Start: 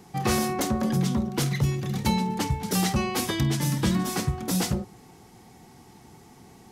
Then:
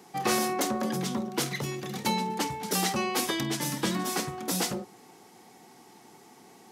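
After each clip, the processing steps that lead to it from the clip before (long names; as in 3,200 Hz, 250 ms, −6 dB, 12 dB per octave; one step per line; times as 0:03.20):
high-pass filter 280 Hz 12 dB per octave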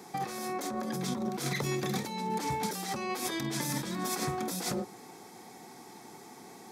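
notch filter 2,900 Hz, Q 7.1
compressor whose output falls as the input rises −34 dBFS, ratio −1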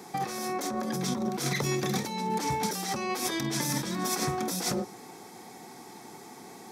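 dynamic equaliser 5,700 Hz, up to +5 dB, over −58 dBFS, Q 5.9
level +3 dB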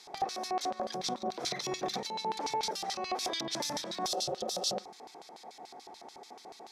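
healed spectral selection 0:04.10–0:04.78, 240–2,600 Hz after
auto-filter band-pass square 6.9 Hz 650–4,100 Hz
level +5.5 dB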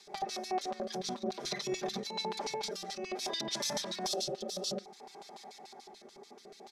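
comb filter 5 ms, depth 95%
rotating-speaker cabinet horn 5 Hz, later 0.6 Hz, at 0:01.43
level −1.5 dB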